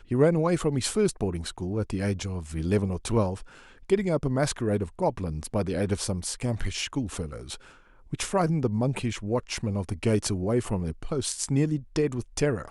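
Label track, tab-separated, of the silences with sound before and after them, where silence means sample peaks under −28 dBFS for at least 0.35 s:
3.340000	3.900000	silence
7.540000	8.130000	silence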